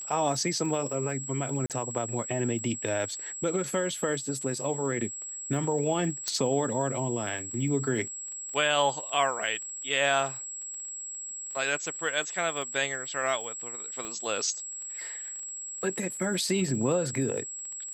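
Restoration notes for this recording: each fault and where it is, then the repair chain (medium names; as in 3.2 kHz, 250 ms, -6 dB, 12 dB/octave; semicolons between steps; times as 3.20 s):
crackle 21 per s -37 dBFS
whine 7.7 kHz -36 dBFS
1.66–1.70 s: dropout 38 ms
6.28 s: pop -14 dBFS
14.05 s: pop -23 dBFS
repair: de-click; band-stop 7.7 kHz, Q 30; interpolate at 1.66 s, 38 ms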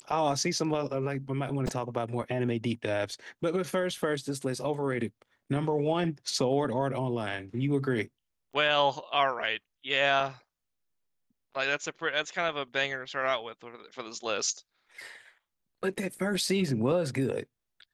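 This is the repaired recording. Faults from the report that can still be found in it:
6.28 s: pop
14.05 s: pop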